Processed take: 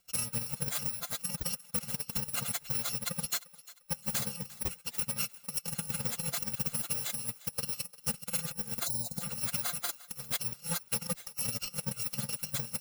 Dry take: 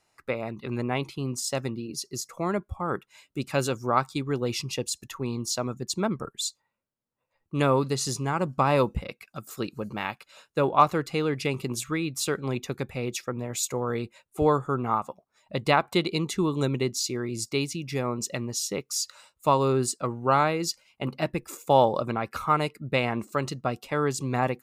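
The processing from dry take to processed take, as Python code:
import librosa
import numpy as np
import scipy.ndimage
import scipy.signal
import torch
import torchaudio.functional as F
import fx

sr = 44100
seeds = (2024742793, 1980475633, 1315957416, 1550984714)

p1 = fx.bit_reversed(x, sr, seeds[0], block=128)
p2 = fx.stretch_vocoder_free(p1, sr, factor=0.52)
p3 = p2 + 0.59 * np.pad(p2, (int(5.7 * sr / 1000.0), 0))[:len(p2)]
p4 = fx.over_compress(p3, sr, threshold_db=-32.0, ratio=-0.5)
p5 = fx.transient(p4, sr, attack_db=12, sustain_db=-6)
p6 = 10.0 ** (-20.5 / 20.0) * np.tanh(p5 / 10.0 ** (-20.5 / 20.0))
p7 = fx.spec_erase(p6, sr, start_s=8.87, length_s=0.34, low_hz=980.0, high_hz=3600.0)
p8 = p7 + fx.echo_thinned(p7, sr, ms=350, feedback_pct=36, hz=510.0, wet_db=-18.5, dry=0)
y = p8 * 10.0 ** (-4.5 / 20.0)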